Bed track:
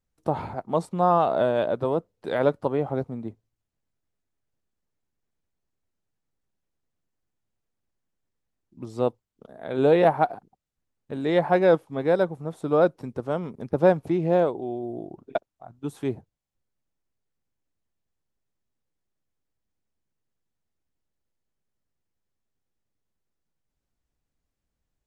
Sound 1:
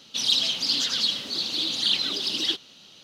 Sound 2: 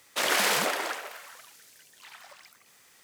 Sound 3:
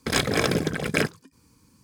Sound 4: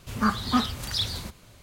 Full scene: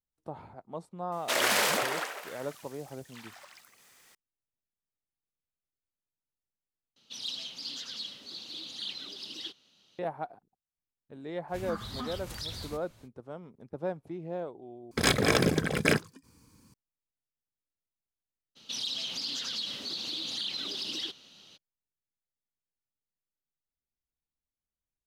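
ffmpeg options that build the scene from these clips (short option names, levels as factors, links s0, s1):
-filter_complex "[1:a]asplit=2[s0][s1];[0:a]volume=0.168[s2];[4:a]acompressor=threshold=0.0501:ratio=6:attack=3.2:release=140:knee=1:detection=peak[s3];[s1]acompressor=threshold=0.0447:ratio=3:attack=1.7:release=115:knee=1:detection=peak[s4];[s2]asplit=3[s5][s6][s7];[s5]atrim=end=6.964[s8];[s0]atrim=end=3.03,asetpts=PTS-STARTPTS,volume=0.178[s9];[s6]atrim=start=9.986:end=14.914[s10];[3:a]atrim=end=1.83,asetpts=PTS-STARTPTS,volume=0.841[s11];[s7]atrim=start=16.736[s12];[2:a]atrim=end=3.03,asetpts=PTS-STARTPTS,volume=0.841,afade=t=in:d=0.004:c=hsin,afade=t=out:st=3.026:d=0.004:c=hsin,adelay=1120[s13];[s3]atrim=end=1.62,asetpts=PTS-STARTPTS,volume=0.422,afade=t=in:d=0.05,afade=t=out:st=1.57:d=0.05,adelay=11470[s14];[s4]atrim=end=3.03,asetpts=PTS-STARTPTS,volume=0.562,afade=t=in:d=0.02,afade=t=out:st=3.01:d=0.02,adelay=18550[s15];[s8][s9]acrossfade=d=0.004:c1=hsin:c2=hsin[s16];[s16][s10]acrossfade=d=0.004:c1=hsin:c2=hsin[s17];[s17][s11]acrossfade=d=0.004:c1=hsin:c2=hsin[s18];[s18][s12]acrossfade=d=0.004:c1=hsin:c2=hsin[s19];[s19][s13][s14][s15]amix=inputs=4:normalize=0"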